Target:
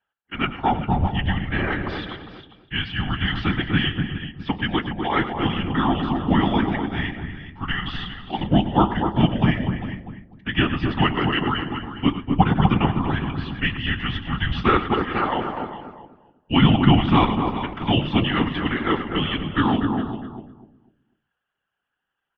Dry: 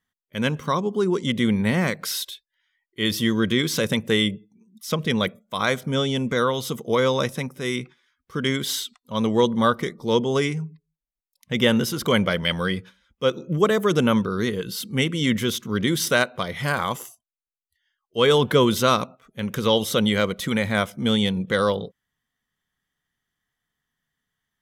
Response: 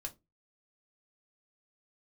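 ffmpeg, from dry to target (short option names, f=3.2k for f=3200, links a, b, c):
-filter_complex "[0:a]aecho=1:1:115|447:0.211|0.224,asplit=2[a][b];[1:a]atrim=start_sample=2205[c];[b][c]afir=irnorm=-1:irlink=0,volume=4dB[d];[a][d]amix=inputs=2:normalize=0,highpass=f=310:t=q:w=0.5412,highpass=f=310:t=q:w=1.307,lowpass=f=3.4k:t=q:w=0.5176,lowpass=f=3.4k:t=q:w=0.7071,lowpass=f=3.4k:t=q:w=1.932,afreqshift=-260,atempo=1.1,afftfilt=real='hypot(re,im)*cos(2*PI*random(0))':imag='hypot(re,im)*sin(2*PI*random(1))':win_size=512:overlap=0.75,asplit=2[e][f];[f]adelay=247,lowpass=f=850:p=1,volume=-3dB,asplit=2[g][h];[h]adelay=247,lowpass=f=850:p=1,volume=0.3,asplit=2[i][j];[j]adelay=247,lowpass=f=850:p=1,volume=0.3,asplit=2[k][l];[l]adelay=247,lowpass=f=850:p=1,volume=0.3[m];[g][i][k][m]amix=inputs=4:normalize=0[n];[e][n]amix=inputs=2:normalize=0,volume=1.5dB"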